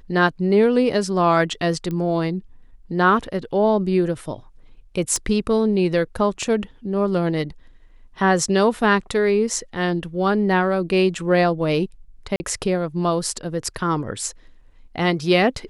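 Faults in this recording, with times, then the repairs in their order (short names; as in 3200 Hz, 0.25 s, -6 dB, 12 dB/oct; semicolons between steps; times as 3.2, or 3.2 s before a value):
1.91 pop -17 dBFS
5.16 pop -11 dBFS
12.36–12.4 gap 40 ms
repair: de-click; interpolate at 12.36, 40 ms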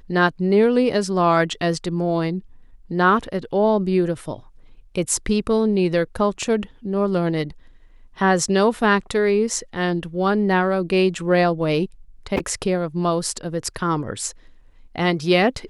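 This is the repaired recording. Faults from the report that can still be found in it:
none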